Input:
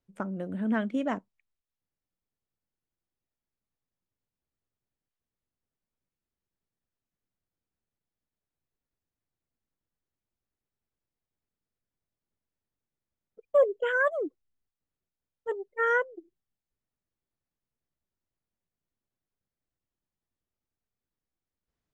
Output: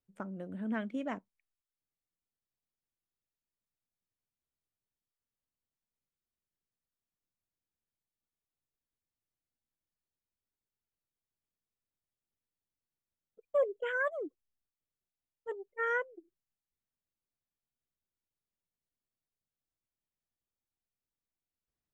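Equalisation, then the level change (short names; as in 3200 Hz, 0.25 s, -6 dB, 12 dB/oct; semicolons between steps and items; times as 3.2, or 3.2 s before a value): dynamic EQ 2300 Hz, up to +7 dB, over -49 dBFS, Q 3.5; -7.5 dB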